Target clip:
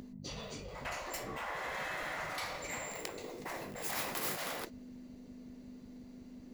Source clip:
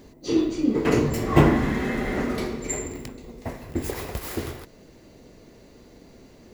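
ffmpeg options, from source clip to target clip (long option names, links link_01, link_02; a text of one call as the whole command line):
ffmpeg -i in.wav -af "agate=range=-15dB:threshold=-43dB:ratio=16:detection=peak,aeval=exprs='val(0)+0.0178*(sin(2*PI*50*n/s)+sin(2*PI*2*50*n/s)/2+sin(2*PI*3*50*n/s)/3+sin(2*PI*4*50*n/s)/4+sin(2*PI*5*50*n/s)/5)':channel_layout=same,areverse,acompressor=threshold=-32dB:ratio=12,areverse,afftfilt=real='re*lt(hypot(re,im),0.0355)':imag='im*lt(hypot(re,im),0.0355)':win_size=1024:overlap=0.75,volume=5dB" out.wav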